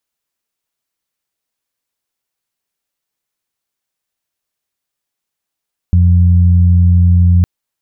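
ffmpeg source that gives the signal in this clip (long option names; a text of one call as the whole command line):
ffmpeg -f lavfi -i "aevalsrc='0.531*sin(2*PI*87.9*t)+0.168*sin(2*PI*175.8*t)':duration=1.51:sample_rate=44100" out.wav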